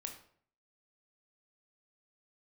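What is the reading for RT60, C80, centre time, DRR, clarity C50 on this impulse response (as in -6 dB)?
0.55 s, 12.0 dB, 18 ms, 3.0 dB, 8.0 dB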